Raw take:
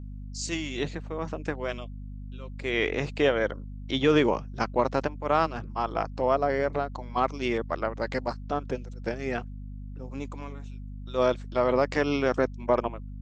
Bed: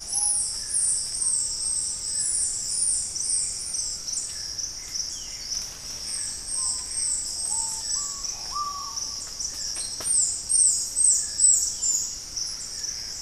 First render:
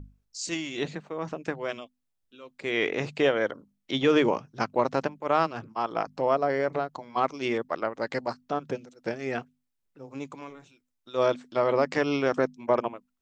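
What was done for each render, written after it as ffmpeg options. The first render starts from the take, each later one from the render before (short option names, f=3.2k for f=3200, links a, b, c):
-af "bandreject=f=50:t=h:w=6,bandreject=f=100:t=h:w=6,bandreject=f=150:t=h:w=6,bandreject=f=200:t=h:w=6,bandreject=f=250:t=h:w=6"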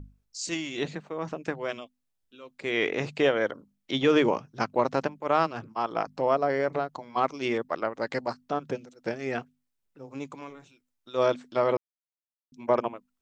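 -filter_complex "[0:a]asplit=3[a][b][c];[a]atrim=end=11.77,asetpts=PTS-STARTPTS,afade=t=out:st=11.766:d=0.004:c=hsin[d];[b]atrim=start=11.77:end=12.52,asetpts=PTS-STARTPTS,volume=0[e];[c]atrim=start=12.52,asetpts=PTS-STARTPTS,afade=t=in:d=0.004:c=hsin[f];[d][e][f]concat=n=3:v=0:a=1"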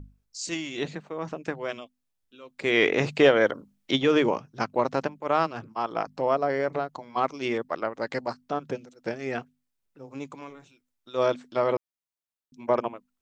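-filter_complex "[0:a]asplit=3[a][b][c];[a]afade=t=out:st=2.57:d=0.02[d];[b]acontrast=39,afade=t=in:st=2.57:d=0.02,afade=t=out:st=3.95:d=0.02[e];[c]afade=t=in:st=3.95:d=0.02[f];[d][e][f]amix=inputs=3:normalize=0"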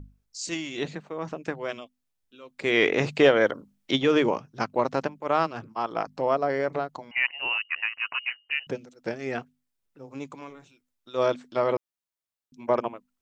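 -filter_complex "[0:a]asettb=1/sr,asplit=3[a][b][c];[a]atrim=end=7.114[d];[b]atrim=start=7.11:end=8.67,asetpts=PTS-STARTPTS,afade=t=in:d=0.004:c=qsin,afade=t=out:st=1.556:d=0.004:c=qsin,lowpass=f=2.6k:t=q:w=0.5098,lowpass=f=2.6k:t=q:w=0.6013,lowpass=f=2.6k:t=q:w=0.9,lowpass=f=2.6k:t=q:w=2.563,afreqshift=-3100[e];[c]atrim=start=8.666[f];[d][e]acrossfade=d=0.004:c1=hsin:c2=qsin[g];[g][f]acrossfade=d=0.004:c1=qsin:c2=hsin"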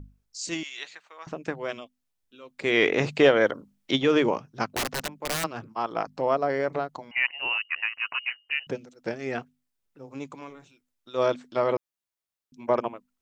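-filter_complex "[0:a]asettb=1/sr,asplit=3[a][b][c];[a]atrim=end=0.634[d];[b]atrim=start=0.63:end=1.27,asetpts=PTS-STARTPTS,afade=t=in:d=0.004:c=qsin,afade=t=out:st=0.636:d=0.004:c=qsin,highpass=1.4k[e];[c]atrim=start=1.266[f];[d][e]acrossfade=d=0.004:c1=hsin:c2=qsin[g];[g][f]acrossfade=d=0.004:c1=qsin:c2=hsin,asettb=1/sr,asplit=3[h][i][j];[h]atrim=end=4.754[k];[i]atrim=start=4.75:end=5.44,asetpts=PTS-STARTPTS,afade=t=in:d=0.004:c=qsin,afade=t=out:st=0.686:d=0.004:c=qsin,aeval=exprs='(mod(11.9*val(0)+1,2)-1)/11.9':c=same[l];[j]atrim=start=5.436[m];[k][l]acrossfade=d=0.004:c1=hsin:c2=qsin[n];[n][m]acrossfade=d=0.004:c1=qsin:c2=hsin"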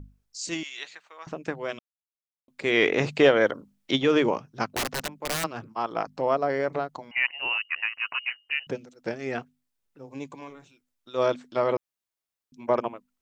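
-filter_complex "[0:a]asettb=1/sr,asplit=3[a][b][c];[a]atrim=end=10.084[d];[b]atrim=start=10.08:end=10.48,asetpts=PTS-STARTPTS,afade=t=in:d=0.004:c=qsin,afade=t=out:st=0.396:d=0.004:c=qsin,asuperstop=centerf=1300:order=12:qfactor=4.6[e];[c]atrim=start=10.476[f];[d][e]acrossfade=d=0.004:c1=hsin:c2=qsin[g];[g][f]acrossfade=d=0.004:c1=qsin:c2=hsin,asplit=3[h][i][j];[h]atrim=end=1.79,asetpts=PTS-STARTPTS,afade=t=out:st=1.786:d=0.004:c=hsin[k];[i]atrim=start=1.79:end=2.48,asetpts=PTS-STARTPTS,volume=0[l];[j]atrim=start=2.48,asetpts=PTS-STARTPTS,afade=t=in:d=0.004:c=hsin[m];[k][l][m]concat=n=3:v=0:a=1"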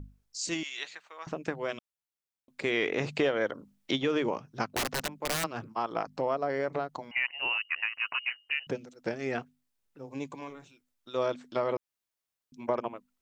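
-af "acompressor=threshold=-28dB:ratio=2.5"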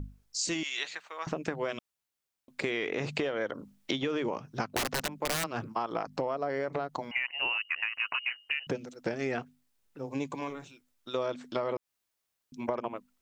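-filter_complex "[0:a]asplit=2[a][b];[b]alimiter=limit=-23.5dB:level=0:latency=1:release=29,volume=-1dB[c];[a][c]amix=inputs=2:normalize=0,acompressor=threshold=-28dB:ratio=6"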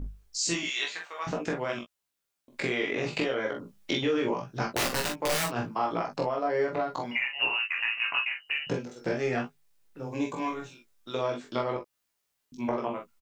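-filter_complex "[0:a]asplit=2[a][b];[b]adelay=17,volume=-5.5dB[c];[a][c]amix=inputs=2:normalize=0,aecho=1:1:24|46|58:0.596|0.531|0.224"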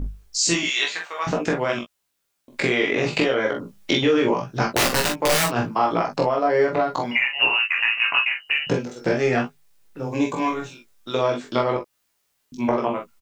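-af "volume=8.5dB"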